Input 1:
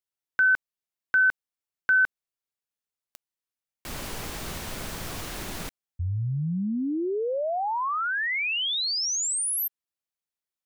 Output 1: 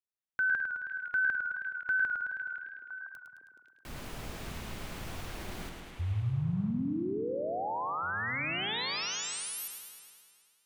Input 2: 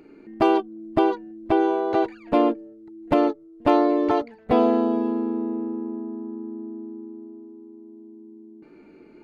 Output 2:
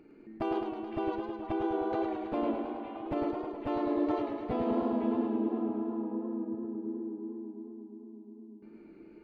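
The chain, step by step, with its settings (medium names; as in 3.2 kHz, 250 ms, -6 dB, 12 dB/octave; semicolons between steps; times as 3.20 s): peak limiter -16 dBFS; tone controls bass +4 dB, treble -5 dB; on a send: repeats whose band climbs or falls 507 ms, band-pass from 2.5 kHz, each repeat -1.4 oct, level -5 dB; on the sum: modulated delay 106 ms, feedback 72%, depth 87 cents, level -6 dB; trim -8.5 dB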